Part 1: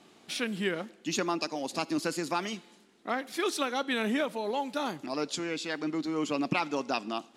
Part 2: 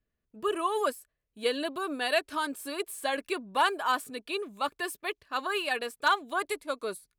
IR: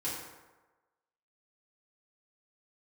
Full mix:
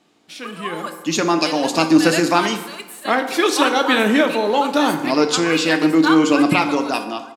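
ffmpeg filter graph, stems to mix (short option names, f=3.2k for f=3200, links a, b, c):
-filter_complex "[0:a]dynaudnorm=f=310:g=7:m=9.5dB,volume=-4dB,asplit=2[a][b];[b]volume=-8dB[c];[1:a]highpass=800,volume=-3.5dB,asplit=3[d][e][f];[e]volume=-9dB[g];[f]volume=-19.5dB[h];[2:a]atrim=start_sample=2205[i];[c][g]amix=inputs=2:normalize=0[j];[j][i]afir=irnorm=-1:irlink=0[k];[h]aecho=0:1:895:1[l];[a][d][k][l]amix=inputs=4:normalize=0,dynaudnorm=f=260:g=7:m=10dB,equalizer=f=10k:w=7.6:g=-5.5"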